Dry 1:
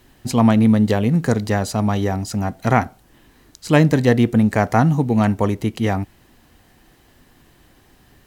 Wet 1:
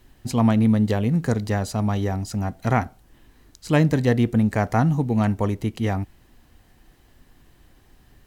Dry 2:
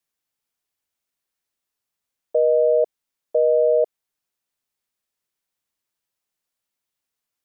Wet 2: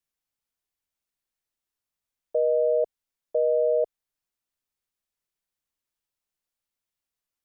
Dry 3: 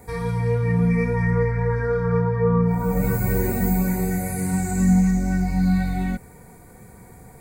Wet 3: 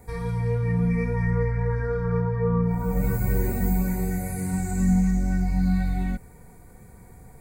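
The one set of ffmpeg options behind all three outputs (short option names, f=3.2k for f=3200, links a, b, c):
-af "lowshelf=f=68:g=11.5,volume=-5.5dB"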